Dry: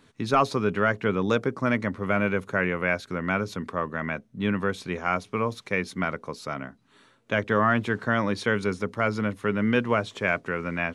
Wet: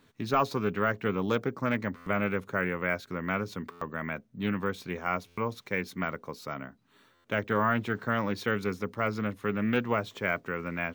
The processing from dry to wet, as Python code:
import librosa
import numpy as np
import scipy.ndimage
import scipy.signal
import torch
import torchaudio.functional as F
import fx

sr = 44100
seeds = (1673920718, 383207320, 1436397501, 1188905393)

y = np.repeat(x[::2], 2)[:len(x)]
y = fx.buffer_glitch(y, sr, at_s=(1.96, 3.71, 5.27, 7.14), block=512, repeats=8)
y = fx.doppler_dist(y, sr, depth_ms=0.16)
y = F.gain(torch.from_numpy(y), -4.5).numpy()